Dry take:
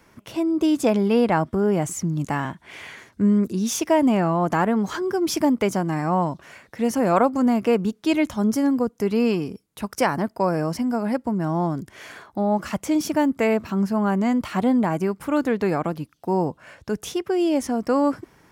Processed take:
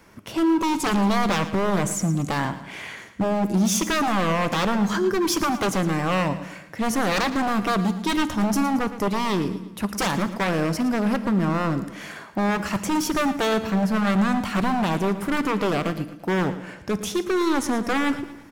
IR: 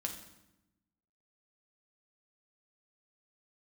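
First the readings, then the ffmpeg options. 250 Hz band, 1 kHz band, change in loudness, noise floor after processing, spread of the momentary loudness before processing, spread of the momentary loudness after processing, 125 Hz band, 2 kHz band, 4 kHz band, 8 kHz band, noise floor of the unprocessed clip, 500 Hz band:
-1.5 dB, +1.0 dB, -1.0 dB, -42 dBFS, 11 LU, 8 LU, +0.5 dB, +4.5 dB, +6.0 dB, +3.5 dB, -59 dBFS, -3.5 dB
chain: -filter_complex "[0:a]aeval=exprs='0.1*(abs(mod(val(0)/0.1+3,4)-2)-1)':c=same,aecho=1:1:113|226|339|452:0.2|0.0898|0.0404|0.0182,asplit=2[a][b];[1:a]atrim=start_sample=2205[c];[b][c]afir=irnorm=-1:irlink=0,volume=-6.5dB[d];[a][d]amix=inputs=2:normalize=0"

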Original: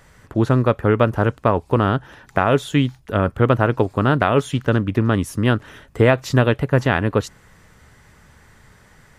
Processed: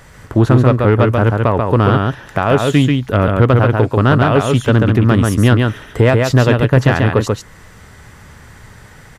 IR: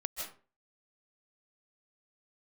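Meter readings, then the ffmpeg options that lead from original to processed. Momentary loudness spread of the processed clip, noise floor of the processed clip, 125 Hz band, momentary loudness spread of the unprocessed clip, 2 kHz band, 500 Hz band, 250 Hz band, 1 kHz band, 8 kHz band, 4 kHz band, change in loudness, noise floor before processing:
5 LU, -41 dBFS, +8.0 dB, 5 LU, +4.0 dB, +4.5 dB, +5.5 dB, +4.0 dB, +7.0 dB, +6.0 dB, +6.0 dB, -52 dBFS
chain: -af "alimiter=limit=-9dB:level=0:latency=1:release=409,equalizer=f=110:t=o:w=0.38:g=3.5,aecho=1:1:138:0.631,acontrast=71,volume=1.5dB"

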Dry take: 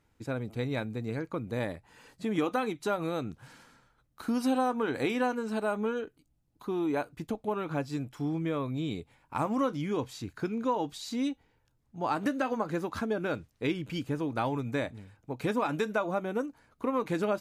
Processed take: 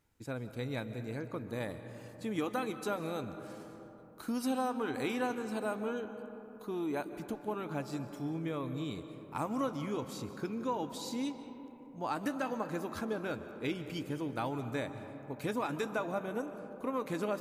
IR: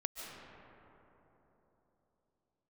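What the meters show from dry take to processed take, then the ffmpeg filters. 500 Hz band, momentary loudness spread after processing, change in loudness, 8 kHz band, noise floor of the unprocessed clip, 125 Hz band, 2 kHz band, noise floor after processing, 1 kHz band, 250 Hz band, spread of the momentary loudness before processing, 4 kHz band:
-5.0 dB, 10 LU, -5.0 dB, -0.5 dB, -72 dBFS, -5.0 dB, -4.5 dB, -51 dBFS, -5.0 dB, -5.0 dB, 8 LU, -3.5 dB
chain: -filter_complex "[0:a]crystalizer=i=1:c=0,asplit=2[a][b];[1:a]atrim=start_sample=2205[c];[b][c]afir=irnorm=-1:irlink=0,volume=-4dB[d];[a][d]amix=inputs=2:normalize=0,volume=-9dB"

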